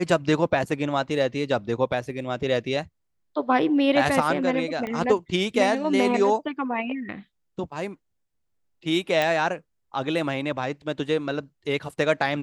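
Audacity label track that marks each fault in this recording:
4.870000	4.870000	pop -19 dBFS
9.220000	9.220000	pop

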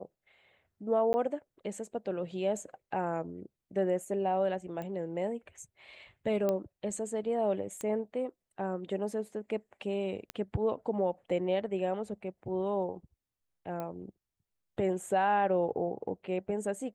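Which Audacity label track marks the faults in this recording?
1.130000	1.140000	gap 10 ms
4.820000	4.820000	pop -28 dBFS
6.490000	6.490000	pop -18 dBFS
7.810000	7.810000	pop -24 dBFS
10.300000	10.300000	pop -21 dBFS
13.800000	13.800000	pop -25 dBFS

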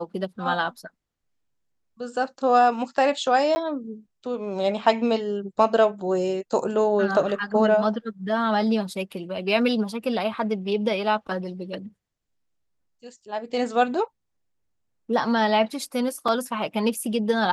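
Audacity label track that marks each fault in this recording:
3.550000	3.560000	gap 10 ms
16.280000	16.280000	gap 3.9 ms

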